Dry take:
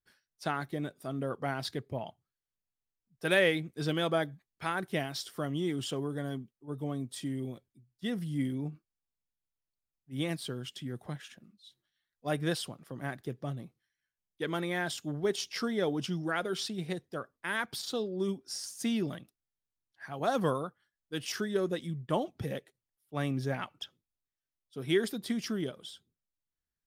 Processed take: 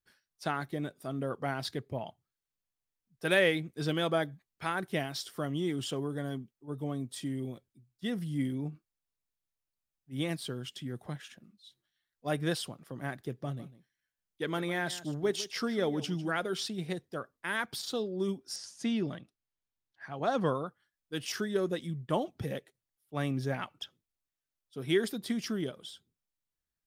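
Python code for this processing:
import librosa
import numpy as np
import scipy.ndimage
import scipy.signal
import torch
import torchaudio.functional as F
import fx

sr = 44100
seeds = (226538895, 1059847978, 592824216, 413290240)

y = fx.echo_single(x, sr, ms=151, db=-16.0, at=(13.28, 16.38))
y = fx.air_absorb(y, sr, metres=74.0, at=(18.56, 20.67))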